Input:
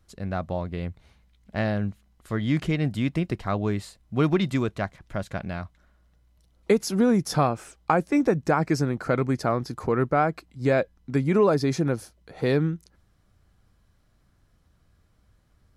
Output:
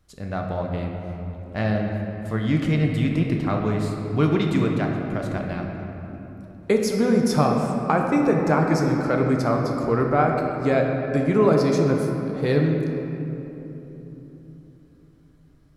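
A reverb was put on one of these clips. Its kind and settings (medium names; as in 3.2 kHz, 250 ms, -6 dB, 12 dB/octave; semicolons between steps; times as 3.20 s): simulated room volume 200 m³, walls hard, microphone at 0.43 m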